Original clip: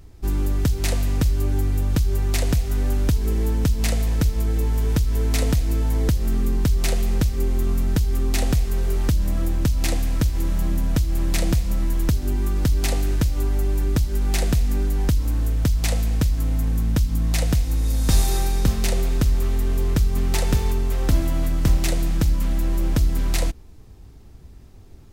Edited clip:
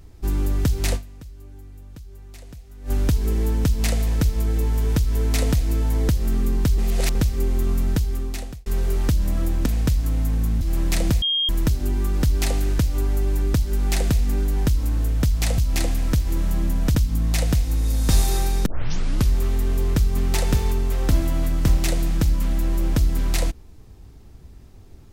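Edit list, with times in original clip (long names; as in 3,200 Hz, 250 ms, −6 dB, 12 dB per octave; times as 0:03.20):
0:00.95–0:02.91: duck −20.5 dB, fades 0.30 s exponential
0:06.78–0:07.15: reverse
0:07.89–0:08.66: fade out
0:09.66–0:11.03: swap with 0:16.00–0:16.95
0:11.64–0:11.91: beep over 3,230 Hz −18.5 dBFS
0:18.66: tape start 0.64 s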